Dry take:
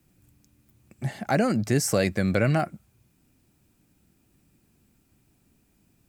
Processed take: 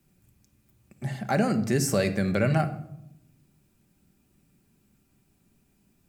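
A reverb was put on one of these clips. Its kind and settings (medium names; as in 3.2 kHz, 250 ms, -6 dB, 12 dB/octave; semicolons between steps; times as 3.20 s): simulated room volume 2200 m³, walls furnished, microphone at 1.2 m; trim -2.5 dB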